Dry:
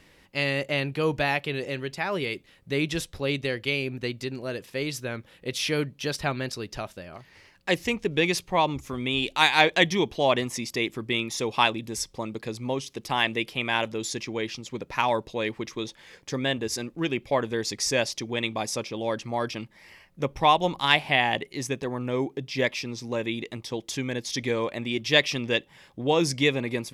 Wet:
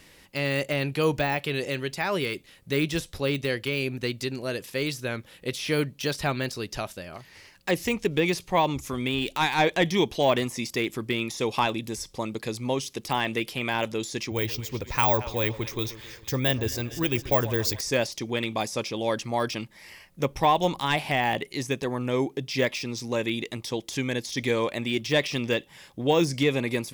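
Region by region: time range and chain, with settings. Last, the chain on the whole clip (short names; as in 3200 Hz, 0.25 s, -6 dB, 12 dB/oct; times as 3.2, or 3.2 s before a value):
14.31–17.81 careless resampling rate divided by 2×, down filtered, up hold + resonant low shelf 130 Hz +10.5 dB, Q 1.5 + split-band echo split 1200 Hz, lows 0.135 s, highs 0.228 s, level -16 dB
whole clip: de-esser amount 95%; high shelf 4600 Hz +9.5 dB; gain +1.5 dB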